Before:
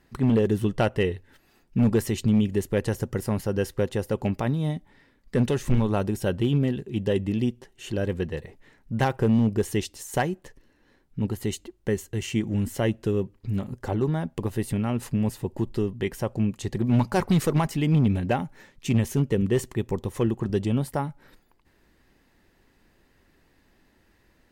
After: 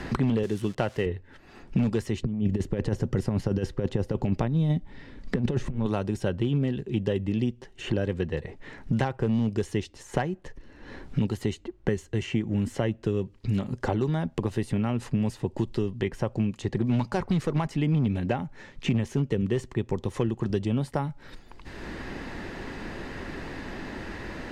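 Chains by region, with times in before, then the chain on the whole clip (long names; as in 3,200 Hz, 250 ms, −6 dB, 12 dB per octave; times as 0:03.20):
0:00.43–0:01.06: spike at every zero crossing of −28.5 dBFS + high-pass filter 200 Hz 6 dB per octave
0:02.22–0:05.86: compressor whose output falls as the input rises −26 dBFS, ratio −0.5 + spectral tilt −2.5 dB per octave
whole clip: low-pass filter 6,400 Hz 12 dB per octave; multiband upward and downward compressor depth 100%; level −3 dB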